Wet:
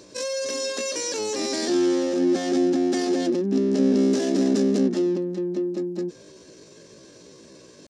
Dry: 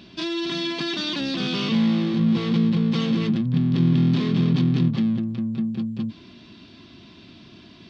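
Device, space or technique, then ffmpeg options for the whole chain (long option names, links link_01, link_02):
chipmunk voice: -filter_complex "[0:a]asettb=1/sr,asplit=3[link_01][link_02][link_03];[link_01]atrim=end=4.004[link_04];[link_02]atrim=start=4:end=4.82,asetpts=PTS-STARTPTS,afade=type=in:duration=0.004:curve=qsin,afade=type=out:start_time=0.816:duration=0.004:curve=qsin,highshelf=frequency=5500:gain=7.5[link_05];[link_03]atrim=start=4.816[link_06];[link_04][link_05]acrossfade=duration=0.004:curve1=hsin:curve2=qsin[link_07];[link_07][link_06]acrossfade=duration=0.004:curve1=qsin:curve2=hsin,asetrate=70004,aresample=44100,atempo=0.629961,volume=-1dB"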